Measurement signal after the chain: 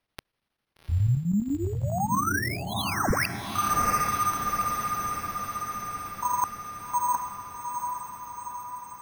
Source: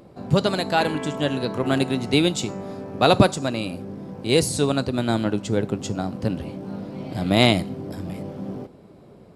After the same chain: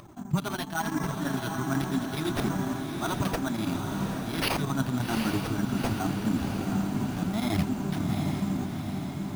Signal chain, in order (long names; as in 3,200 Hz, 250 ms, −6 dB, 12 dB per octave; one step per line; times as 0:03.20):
high-pass filter 210 Hz 6 dB per octave
flanger 0.92 Hz, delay 1.6 ms, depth 6.9 ms, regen 0%
high-shelf EQ 5,400 Hz +7 dB
reversed playback
downward compressor 6 to 1, threshold −32 dBFS
reversed playback
square-wave tremolo 12 Hz, depth 65%, duty 80%
phaser with its sweep stopped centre 1,200 Hz, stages 4
bad sample-rate conversion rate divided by 6×, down none, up hold
low-shelf EQ 300 Hz +6.5 dB
on a send: feedback delay with all-pass diffusion 783 ms, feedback 63%, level −5 dB
on the sum: level +8 dB